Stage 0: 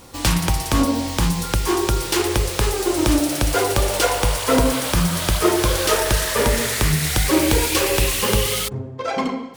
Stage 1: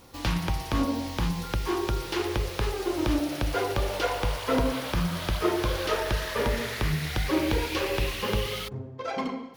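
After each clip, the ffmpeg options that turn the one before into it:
-filter_complex "[0:a]acrossover=split=4700[s0][s1];[s1]acompressor=threshold=0.0224:ratio=4:attack=1:release=60[s2];[s0][s2]amix=inputs=2:normalize=0,equalizer=f=8100:t=o:w=0.51:g=-7.5,volume=0.398"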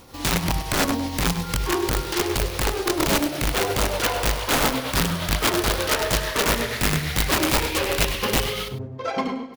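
-af "aeval=exprs='(mod(10*val(0)+1,2)-1)/10':c=same,tremolo=f=8.6:d=0.37,aecho=1:1:101:0.224,volume=2.11"

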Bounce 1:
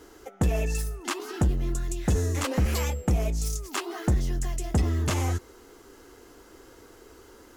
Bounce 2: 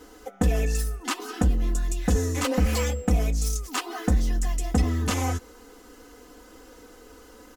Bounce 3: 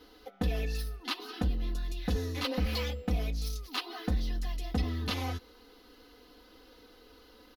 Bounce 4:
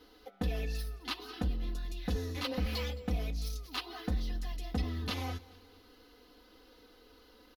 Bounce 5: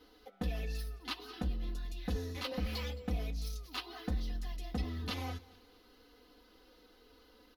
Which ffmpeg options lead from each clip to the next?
-af "aecho=1:1:4:0.88"
-af "firequalizer=gain_entry='entry(1600,0);entry(4100,11);entry(7500,-17);entry(11000,-1)':delay=0.05:min_phase=1,volume=0.376"
-af "aecho=1:1:217|434|651:0.0841|0.037|0.0163,volume=0.708"
-af "flanger=delay=3.9:depth=1.8:regen=-68:speed=0.96:shape=sinusoidal,volume=1.19"

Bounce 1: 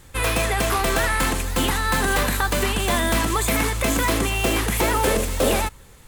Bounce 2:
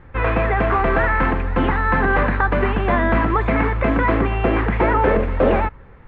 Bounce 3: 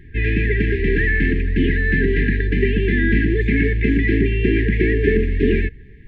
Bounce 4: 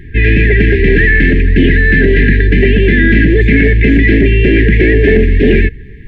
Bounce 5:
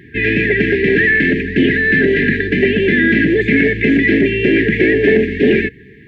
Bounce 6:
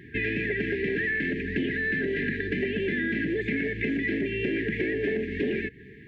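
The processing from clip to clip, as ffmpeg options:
-af "lowpass=f=2000:w=0.5412,lowpass=f=2000:w=1.3066,volume=1.68"
-af "afftfilt=real='re*(1-between(b*sr/4096,460,1600))':imag='im*(1-between(b*sr/4096,460,1600))':win_size=4096:overlap=0.75,volume=1.33"
-af "apsyclip=4.47,volume=0.794"
-af "highpass=180,volume=0.841"
-af "acompressor=threshold=0.1:ratio=4,volume=0.473"

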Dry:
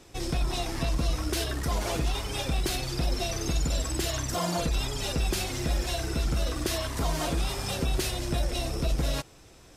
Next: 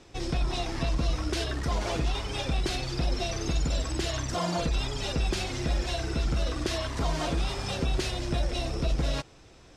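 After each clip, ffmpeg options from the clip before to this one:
-af "lowpass=6000"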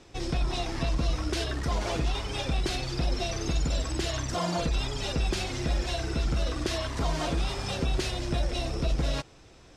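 -af anull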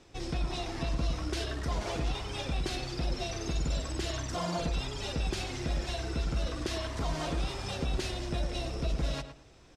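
-filter_complex "[0:a]asplit=2[s0][s1];[s1]adelay=110,lowpass=f=2500:p=1,volume=0.355,asplit=2[s2][s3];[s3]adelay=110,lowpass=f=2500:p=1,volume=0.24,asplit=2[s4][s5];[s5]adelay=110,lowpass=f=2500:p=1,volume=0.24[s6];[s0][s2][s4][s6]amix=inputs=4:normalize=0,volume=0.596"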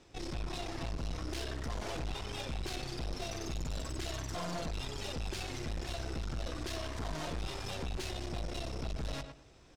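-af "aeval=exprs='(tanh(63.1*val(0)+0.65)-tanh(0.65))/63.1':c=same,volume=1.12"

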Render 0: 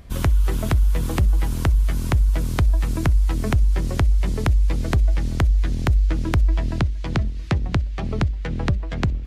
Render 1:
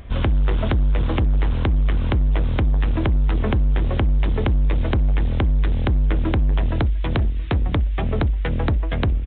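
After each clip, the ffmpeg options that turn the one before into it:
-af "aresample=8000,asoftclip=type=hard:threshold=0.0944,aresample=44100,equalizer=f=170:t=o:w=0.57:g=-5,volume=1.88"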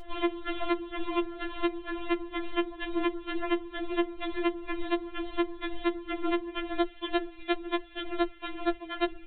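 -af "afftfilt=real='re*4*eq(mod(b,16),0)':imag='im*4*eq(mod(b,16),0)':win_size=2048:overlap=0.75"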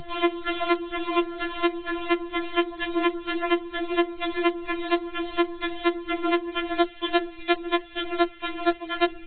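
-filter_complex "[0:a]acrossover=split=310[s0][s1];[s0]acompressor=threshold=0.00631:ratio=6[s2];[s2][s1]amix=inputs=2:normalize=0,equalizer=f=150:t=o:w=0.41:g=13,volume=2.37" -ar 32000 -c:a ac3 -b:a 32k

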